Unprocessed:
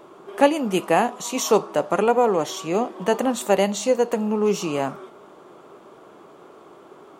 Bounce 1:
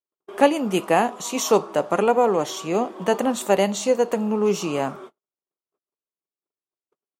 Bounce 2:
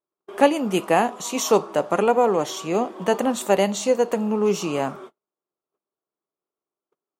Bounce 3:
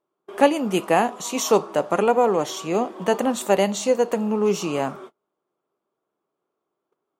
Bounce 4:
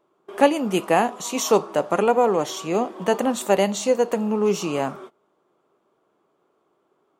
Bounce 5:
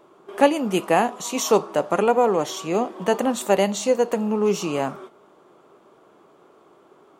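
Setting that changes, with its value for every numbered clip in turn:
gate, range: -59 dB, -46 dB, -34 dB, -21 dB, -7 dB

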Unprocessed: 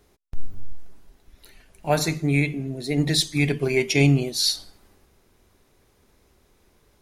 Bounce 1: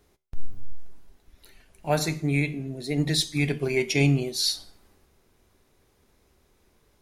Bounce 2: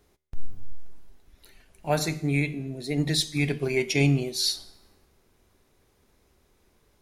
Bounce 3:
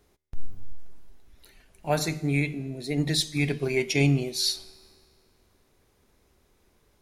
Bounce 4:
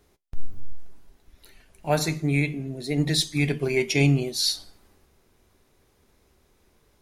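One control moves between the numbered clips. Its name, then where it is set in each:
feedback comb, decay: 0.38 s, 0.85 s, 1.8 s, 0.16 s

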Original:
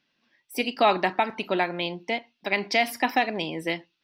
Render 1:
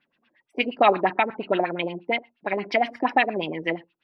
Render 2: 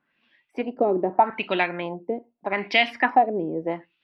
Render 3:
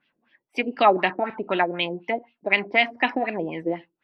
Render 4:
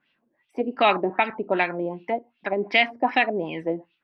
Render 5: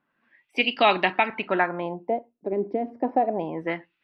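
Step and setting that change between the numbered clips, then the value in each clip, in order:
LFO low-pass, rate: 8.5 Hz, 0.8 Hz, 4 Hz, 2.6 Hz, 0.28 Hz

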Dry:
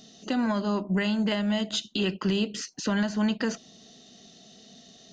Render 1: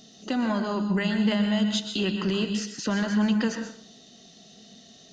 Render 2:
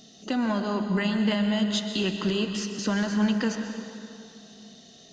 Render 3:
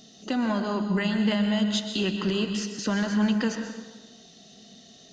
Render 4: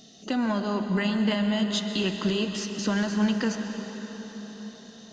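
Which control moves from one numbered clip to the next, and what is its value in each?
plate-style reverb, RT60: 0.51 s, 2.5 s, 1.2 s, 5.1 s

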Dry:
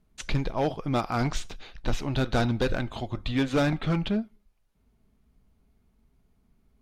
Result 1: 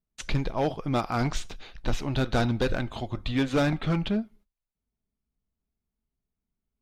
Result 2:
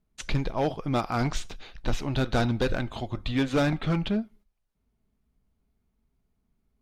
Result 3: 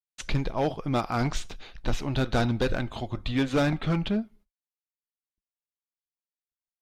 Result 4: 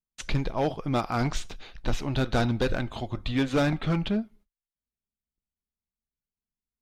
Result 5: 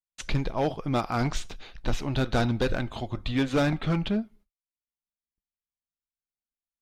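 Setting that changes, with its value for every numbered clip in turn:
gate, range: -20 dB, -8 dB, -59 dB, -32 dB, -44 dB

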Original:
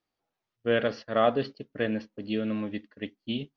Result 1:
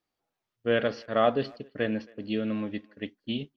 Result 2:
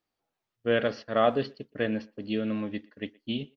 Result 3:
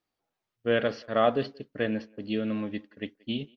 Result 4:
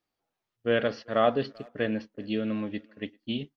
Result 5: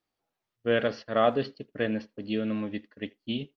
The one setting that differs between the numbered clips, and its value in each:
speakerphone echo, time: 270 ms, 120 ms, 180 ms, 390 ms, 80 ms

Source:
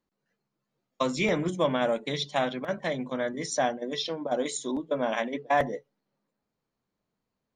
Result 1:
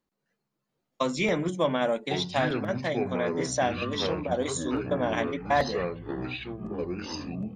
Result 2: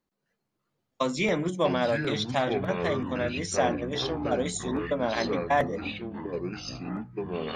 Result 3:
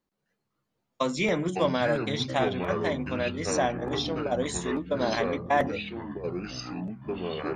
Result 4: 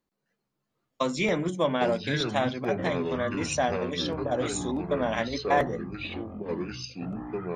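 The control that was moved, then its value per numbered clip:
ever faster or slower copies, time: 686 ms, 227 ms, 138 ms, 386 ms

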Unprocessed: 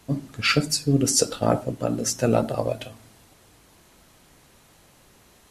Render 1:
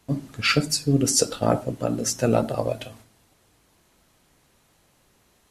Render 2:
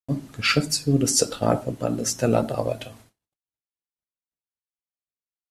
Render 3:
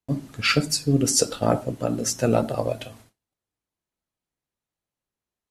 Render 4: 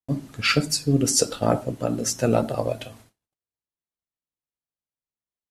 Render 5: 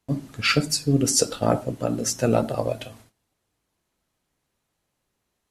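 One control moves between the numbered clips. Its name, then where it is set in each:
gate, range: -7 dB, -60 dB, -35 dB, -47 dB, -22 dB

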